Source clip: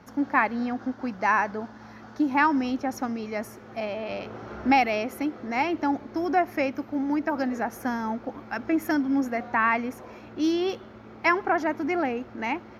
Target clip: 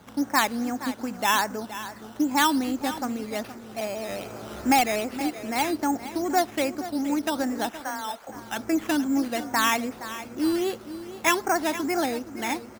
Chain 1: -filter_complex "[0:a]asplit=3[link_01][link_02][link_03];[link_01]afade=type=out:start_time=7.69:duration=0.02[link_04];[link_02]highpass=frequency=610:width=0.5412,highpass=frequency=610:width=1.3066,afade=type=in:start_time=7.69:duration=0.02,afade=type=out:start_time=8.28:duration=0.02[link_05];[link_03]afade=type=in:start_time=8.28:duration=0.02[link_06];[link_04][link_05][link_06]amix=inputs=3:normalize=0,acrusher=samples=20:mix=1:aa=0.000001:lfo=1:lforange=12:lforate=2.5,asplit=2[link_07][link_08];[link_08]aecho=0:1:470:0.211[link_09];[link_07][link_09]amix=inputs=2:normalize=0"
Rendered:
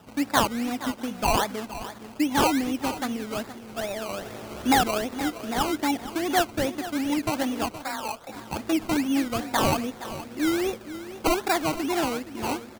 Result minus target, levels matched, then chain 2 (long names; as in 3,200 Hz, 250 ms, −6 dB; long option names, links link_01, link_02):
sample-and-hold swept by an LFO: distortion +8 dB
-filter_complex "[0:a]asplit=3[link_01][link_02][link_03];[link_01]afade=type=out:start_time=7.69:duration=0.02[link_04];[link_02]highpass=frequency=610:width=0.5412,highpass=frequency=610:width=1.3066,afade=type=in:start_time=7.69:duration=0.02,afade=type=out:start_time=8.28:duration=0.02[link_05];[link_03]afade=type=in:start_time=8.28:duration=0.02[link_06];[link_04][link_05][link_06]amix=inputs=3:normalize=0,acrusher=samples=8:mix=1:aa=0.000001:lfo=1:lforange=4.8:lforate=2.5,asplit=2[link_07][link_08];[link_08]aecho=0:1:470:0.211[link_09];[link_07][link_09]amix=inputs=2:normalize=0"